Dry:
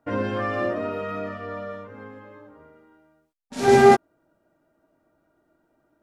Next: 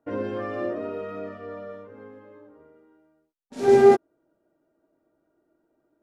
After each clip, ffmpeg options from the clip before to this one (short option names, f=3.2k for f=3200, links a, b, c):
-af "equalizer=f=390:w=1.1:g=9.5,volume=-9dB"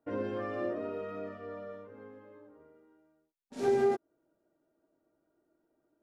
-af "acompressor=threshold=-19dB:ratio=5,volume=-5.5dB"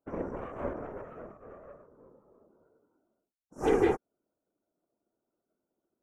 -af "afftfilt=real='re*(1-between(b*sr/4096,1500,5400))':imag='im*(1-between(b*sr/4096,1500,5400))':win_size=4096:overlap=0.75,aeval=exprs='0.133*(cos(1*acos(clip(val(0)/0.133,-1,1)))-cos(1*PI/2))+0.00944*(cos(5*acos(clip(val(0)/0.133,-1,1)))-cos(5*PI/2))+0.0133*(cos(6*acos(clip(val(0)/0.133,-1,1)))-cos(6*PI/2))+0.0188*(cos(7*acos(clip(val(0)/0.133,-1,1)))-cos(7*PI/2))':c=same,afftfilt=real='hypot(re,im)*cos(2*PI*random(0))':imag='hypot(re,im)*sin(2*PI*random(1))':win_size=512:overlap=0.75,volume=6.5dB"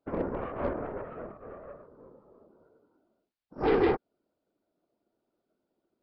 -filter_complex "[0:a]asplit=2[a][b];[b]aeval=exprs='0.0447*(abs(mod(val(0)/0.0447+3,4)-2)-1)':c=same,volume=-4dB[c];[a][c]amix=inputs=2:normalize=0,aresample=11025,aresample=44100"